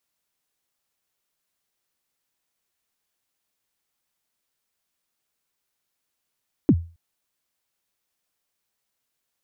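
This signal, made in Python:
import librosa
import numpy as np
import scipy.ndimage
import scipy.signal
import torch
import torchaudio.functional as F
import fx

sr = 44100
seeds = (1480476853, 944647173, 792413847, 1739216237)

y = fx.drum_kick(sr, seeds[0], length_s=0.27, level_db=-8.5, start_hz=350.0, end_hz=84.0, sweep_ms=57.0, decay_s=0.34, click=False)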